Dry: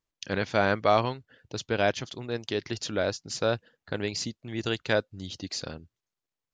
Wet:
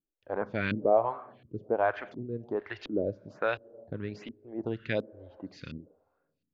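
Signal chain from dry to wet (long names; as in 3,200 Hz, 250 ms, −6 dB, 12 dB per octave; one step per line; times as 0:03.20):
four-comb reverb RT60 1.4 s, combs from 30 ms, DRR 17 dB
auto-filter low-pass saw up 1.4 Hz 250–2,900 Hz
phaser with staggered stages 1.2 Hz
level −2 dB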